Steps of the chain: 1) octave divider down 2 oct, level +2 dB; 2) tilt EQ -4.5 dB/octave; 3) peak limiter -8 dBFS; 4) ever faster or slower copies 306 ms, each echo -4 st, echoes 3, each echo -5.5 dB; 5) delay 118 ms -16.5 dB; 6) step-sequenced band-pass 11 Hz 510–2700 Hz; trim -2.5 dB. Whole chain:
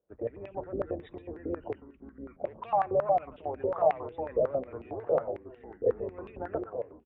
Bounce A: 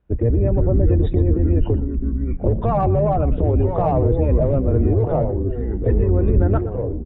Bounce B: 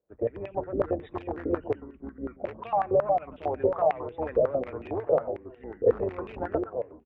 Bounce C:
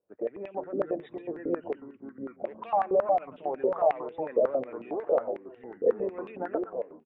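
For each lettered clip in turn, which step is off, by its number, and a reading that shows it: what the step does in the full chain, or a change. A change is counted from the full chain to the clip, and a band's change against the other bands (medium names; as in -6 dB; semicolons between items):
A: 6, 125 Hz band +22.0 dB; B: 3, mean gain reduction 4.0 dB; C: 1, 125 Hz band -8.5 dB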